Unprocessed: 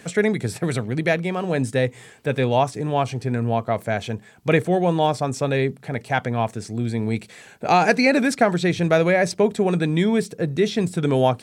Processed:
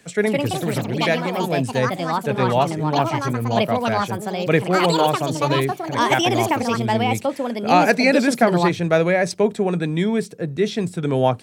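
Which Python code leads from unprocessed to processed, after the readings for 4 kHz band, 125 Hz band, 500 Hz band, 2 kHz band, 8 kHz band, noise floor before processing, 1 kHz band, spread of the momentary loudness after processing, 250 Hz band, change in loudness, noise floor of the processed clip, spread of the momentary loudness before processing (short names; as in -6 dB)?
+5.5 dB, 0.0 dB, +1.5 dB, +1.5 dB, +3.0 dB, -48 dBFS, +4.0 dB, 7 LU, +1.5 dB, +2.0 dB, -37 dBFS, 9 LU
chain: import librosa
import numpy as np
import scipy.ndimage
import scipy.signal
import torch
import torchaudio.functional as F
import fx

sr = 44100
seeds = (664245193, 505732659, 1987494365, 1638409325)

y = fx.echo_pitch(x, sr, ms=207, semitones=5, count=2, db_per_echo=-3.0)
y = fx.band_widen(y, sr, depth_pct=40)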